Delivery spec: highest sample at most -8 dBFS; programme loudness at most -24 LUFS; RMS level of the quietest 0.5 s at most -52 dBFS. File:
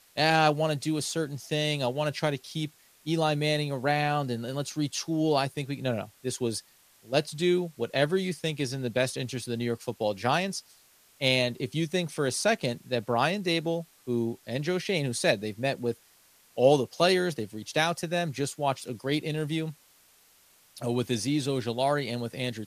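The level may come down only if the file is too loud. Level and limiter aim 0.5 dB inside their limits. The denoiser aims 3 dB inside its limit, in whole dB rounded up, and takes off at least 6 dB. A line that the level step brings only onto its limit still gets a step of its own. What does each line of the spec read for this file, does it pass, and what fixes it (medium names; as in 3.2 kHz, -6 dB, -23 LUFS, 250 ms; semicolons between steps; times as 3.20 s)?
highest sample -7.0 dBFS: fail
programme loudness -28.5 LUFS: pass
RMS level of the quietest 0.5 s -61 dBFS: pass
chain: peak limiter -8.5 dBFS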